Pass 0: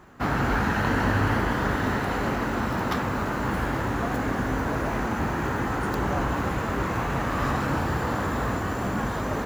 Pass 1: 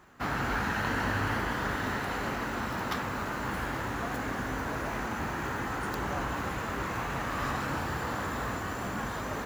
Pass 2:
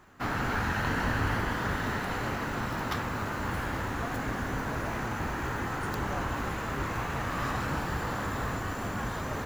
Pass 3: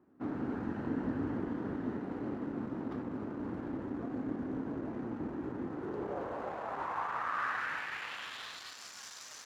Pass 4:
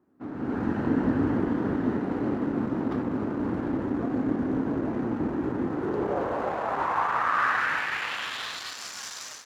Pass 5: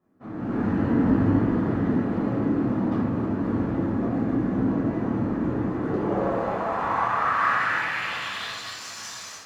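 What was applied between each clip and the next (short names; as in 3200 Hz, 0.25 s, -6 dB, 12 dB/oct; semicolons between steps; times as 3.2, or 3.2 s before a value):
tilt shelf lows -3.5 dB; gain -5.5 dB
octaver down 1 oct, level -1 dB
in parallel at -8 dB: bit-crush 5-bit; on the sum: band-pass sweep 290 Hz -> 5600 Hz, 5.66–8.95
AGC gain up to 12 dB; gain -1.5 dB
shoebox room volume 610 m³, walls furnished, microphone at 6 m; gain -6.5 dB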